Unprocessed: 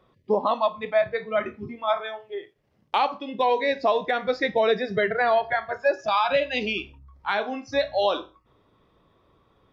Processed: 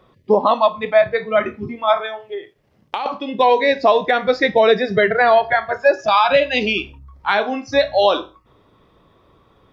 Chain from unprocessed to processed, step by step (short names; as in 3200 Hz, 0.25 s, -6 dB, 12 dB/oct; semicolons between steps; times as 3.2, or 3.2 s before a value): 2.05–3.06 compressor 4:1, threshold -32 dBFS, peak gain reduction 12 dB; gain +8 dB